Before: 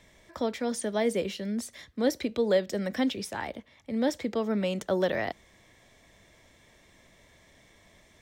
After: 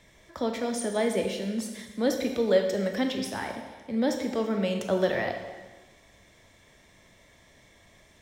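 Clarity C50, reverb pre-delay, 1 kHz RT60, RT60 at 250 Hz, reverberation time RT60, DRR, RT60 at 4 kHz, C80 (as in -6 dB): 5.5 dB, 8 ms, 1.3 s, 1.3 s, 1.3 s, 3.5 dB, 1.2 s, 7.5 dB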